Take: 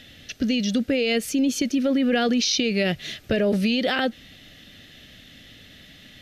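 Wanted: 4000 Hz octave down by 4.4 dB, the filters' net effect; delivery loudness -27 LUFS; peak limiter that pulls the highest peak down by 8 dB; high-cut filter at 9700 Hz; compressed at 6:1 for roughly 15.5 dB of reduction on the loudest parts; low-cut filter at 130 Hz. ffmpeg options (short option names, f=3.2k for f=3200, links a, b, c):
-af "highpass=130,lowpass=9.7k,equalizer=f=4k:t=o:g=-6,acompressor=threshold=-36dB:ratio=6,volume=15dB,alimiter=limit=-17dB:level=0:latency=1"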